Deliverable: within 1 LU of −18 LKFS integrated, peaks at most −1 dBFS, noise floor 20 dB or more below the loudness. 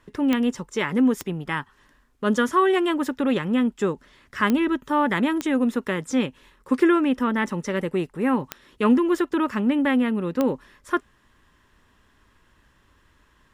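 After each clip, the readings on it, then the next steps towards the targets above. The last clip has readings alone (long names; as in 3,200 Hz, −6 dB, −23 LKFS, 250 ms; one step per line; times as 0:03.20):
number of clicks 6; integrated loudness −23.0 LKFS; sample peak −7.5 dBFS; target loudness −18.0 LKFS
→ click removal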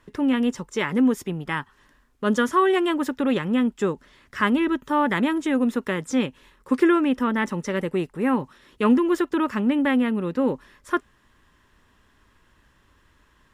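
number of clicks 0; integrated loudness −23.0 LKFS; sample peak −7.5 dBFS; target loudness −18.0 LKFS
→ level +5 dB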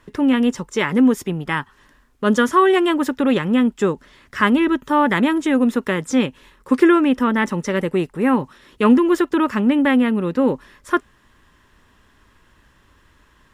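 integrated loudness −18.0 LKFS; sample peak −2.5 dBFS; background noise floor −56 dBFS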